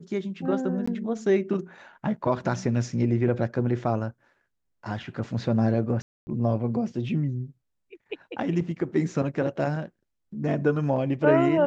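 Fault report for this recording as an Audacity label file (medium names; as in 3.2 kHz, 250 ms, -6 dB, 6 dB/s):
0.860000	0.880000	dropout 15 ms
6.020000	6.270000	dropout 250 ms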